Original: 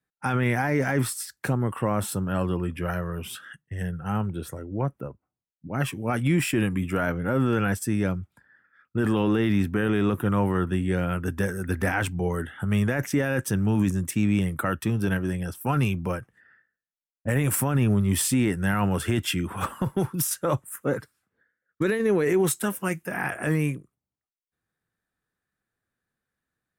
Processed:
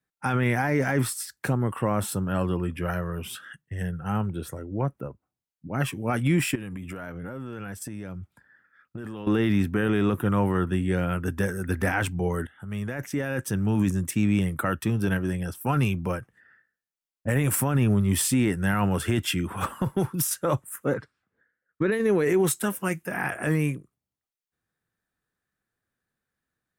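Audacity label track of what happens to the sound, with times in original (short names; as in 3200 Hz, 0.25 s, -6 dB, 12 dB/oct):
6.550000	9.270000	compressor 10:1, threshold -32 dBFS
12.470000	13.920000	fade in linear, from -14 dB
20.930000	21.910000	LPF 4400 Hz -> 2400 Hz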